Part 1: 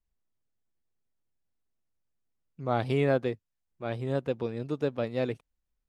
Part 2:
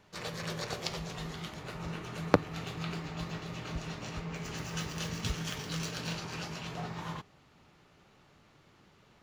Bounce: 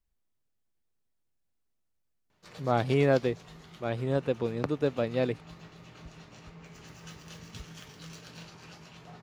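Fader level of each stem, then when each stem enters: +1.5, −10.0 decibels; 0.00, 2.30 seconds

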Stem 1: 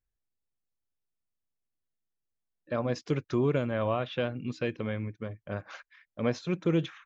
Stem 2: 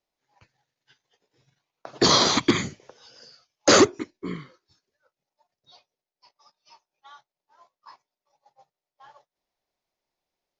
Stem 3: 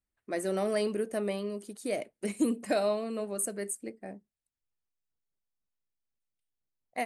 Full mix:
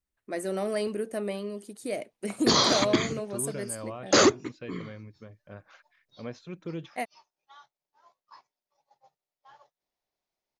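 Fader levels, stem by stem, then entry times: −10.0, −4.0, 0.0 decibels; 0.00, 0.45, 0.00 seconds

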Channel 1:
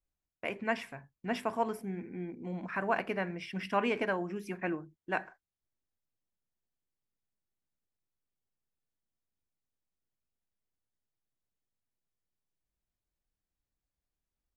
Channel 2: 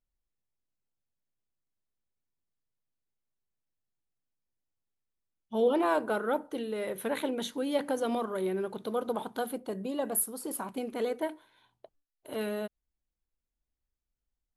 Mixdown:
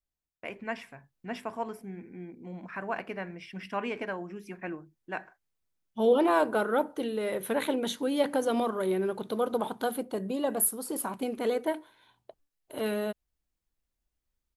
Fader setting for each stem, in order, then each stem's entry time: −3.0, +3.0 decibels; 0.00, 0.45 seconds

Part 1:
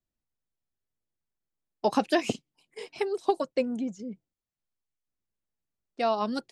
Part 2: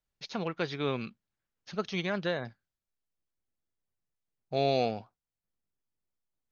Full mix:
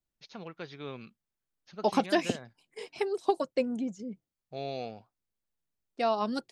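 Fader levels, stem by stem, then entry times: −1.5, −9.5 decibels; 0.00, 0.00 seconds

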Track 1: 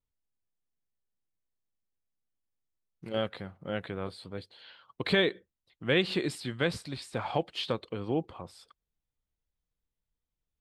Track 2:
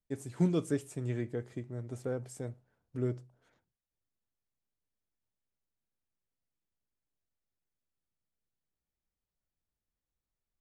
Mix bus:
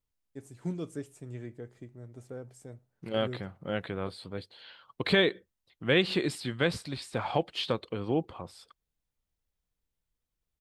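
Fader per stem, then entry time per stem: +1.5, −6.5 decibels; 0.00, 0.25 seconds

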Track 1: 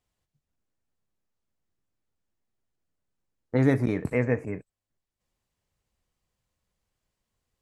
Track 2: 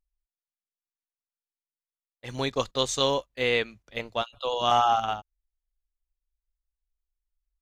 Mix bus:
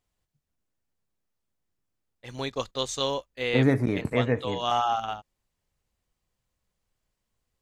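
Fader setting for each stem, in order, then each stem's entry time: 0.0, −3.5 decibels; 0.00, 0.00 seconds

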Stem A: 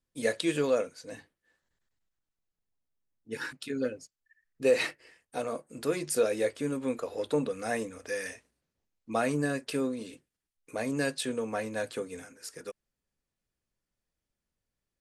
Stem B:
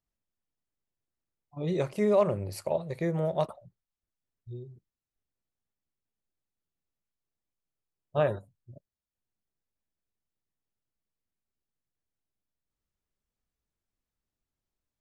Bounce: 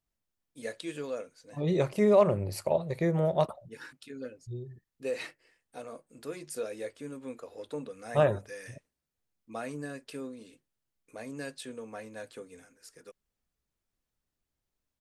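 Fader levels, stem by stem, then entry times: −9.5, +2.0 decibels; 0.40, 0.00 seconds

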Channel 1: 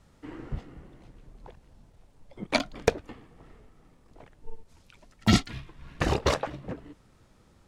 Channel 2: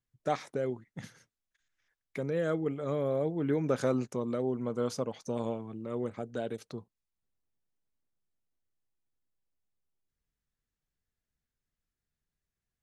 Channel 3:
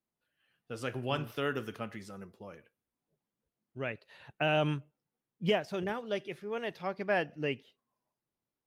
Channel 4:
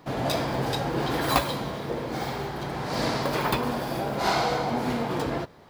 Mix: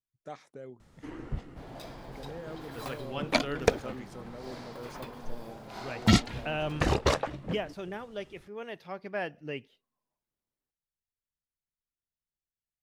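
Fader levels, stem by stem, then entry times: −0.5, −12.5, −4.0, −18.5 decibels; 0.80, 0.00, 2.05, 1.50 seconds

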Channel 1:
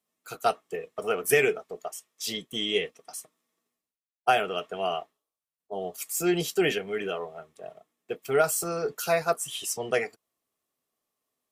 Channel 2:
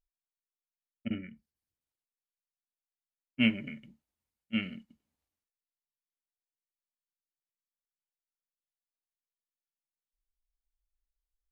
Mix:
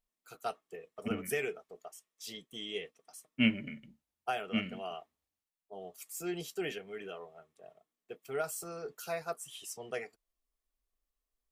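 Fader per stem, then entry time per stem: −12.5, −1.5 decibels; 0.00, 0.00 seconds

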